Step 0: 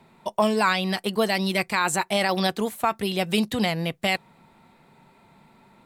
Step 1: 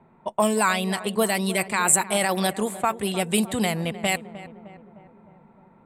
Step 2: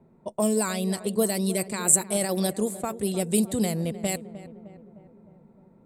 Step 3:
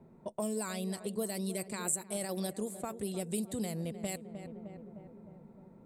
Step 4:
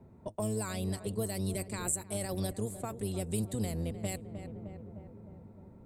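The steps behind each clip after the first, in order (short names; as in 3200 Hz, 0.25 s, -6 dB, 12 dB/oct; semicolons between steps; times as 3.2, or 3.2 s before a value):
resonant high shelf 6700 Hz +7.5 dB, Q 3; low-pass opened by the level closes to 1400 Hz, open at -19 dBFS; darkening echo 0.306 s, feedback 62%, low-pass 1400 Hz, level -14 dB
band shelf 1600 Hz -11.5 dB 2.5 oct
compressor 2:1, threshold -42 dBFS, peak gain reduction 16 dB
octaver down 1 oct, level 0 dB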